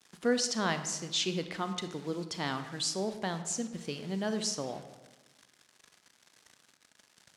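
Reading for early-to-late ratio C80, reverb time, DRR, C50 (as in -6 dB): 12.0 dB, 1.2 s, 9.0 dB, 10.5 dB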